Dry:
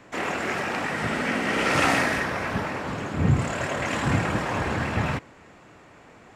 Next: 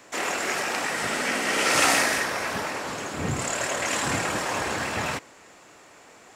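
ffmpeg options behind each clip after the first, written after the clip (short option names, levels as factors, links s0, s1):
-af "bass=f=250:g=-11,treble=f=4000:g=12"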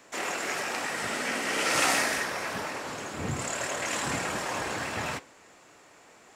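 -af "flanger=delay=4.3:depth=4.9:regen=-78:speed=0.47:shape=triangular"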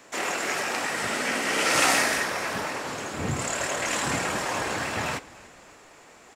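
-filter_complex "[0:a]asplit=5[s0][s1][s2][s3][s4];[s1]adelay=290,afreqshift=-37,volume=0.0794[s5];[s2]adelay=580,afreqshift=-74,volume=0.0427[s6];[s3]adelay=870,afreqshift=-111,volume=0.0232[s7];[s4]adelay=1160,afreqshift=-148,volume=0.0124[s8];[s0][s5][s6][s7][s8]amix=inputs=5:normalize=0,volume=1.5"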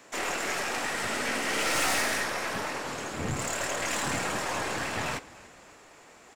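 -af "aeval=exprs='(tanh(14.1*val(0)+0.5)-tanh(0.5))/14.1':c=same"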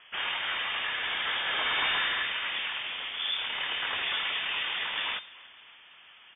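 -af "lowpass=f=3100:t=q:w=0.5098,lowpass=f=3100:t=q:w=0.6013,lowpass=f=3100:t=q:w=0.9,lowpass=f=3100:t=q:w=2.563,afreqshift=-3600"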